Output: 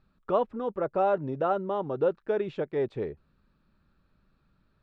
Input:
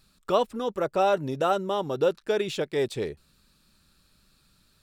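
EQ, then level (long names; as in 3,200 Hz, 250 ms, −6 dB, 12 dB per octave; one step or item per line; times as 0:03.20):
low-pass filter 1,500 Hz 12 dB per octave
−2.0 dB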